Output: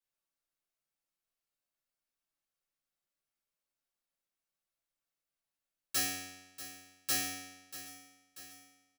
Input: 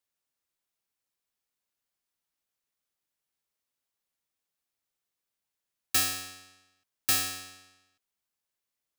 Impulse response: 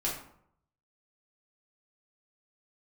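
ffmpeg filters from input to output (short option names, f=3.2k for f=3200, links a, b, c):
-filter_complex "[0:a]aecho=1:1:638|1276|1914|2552|3190|3828:0.2|0.114|0.0648|0.037|0.0211|0.012[a];[1:a]atrim=start_sample=2205,asetrate=83790,aresample=44100[b];[a][b]afir=irnorm=-1:irlink=0,volume=-5dB"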